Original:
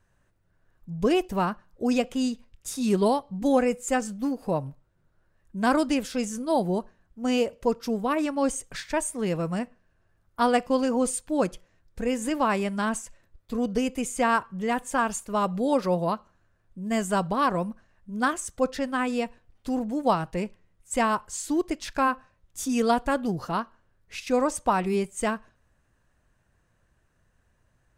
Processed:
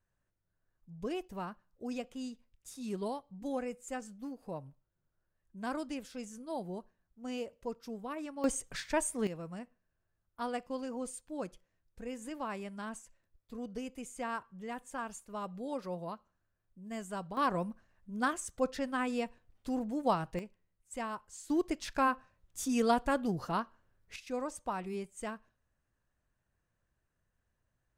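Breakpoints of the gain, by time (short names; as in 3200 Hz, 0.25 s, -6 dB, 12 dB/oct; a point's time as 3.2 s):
-15 dB
from 8.44 s -4.5 dB
from 9.27 s -15 dB
from 17.37 s -7 dB
from 20.39 s -15 dB
from 21.5 s -5.5 dB
from 24.16 s -13.5 dB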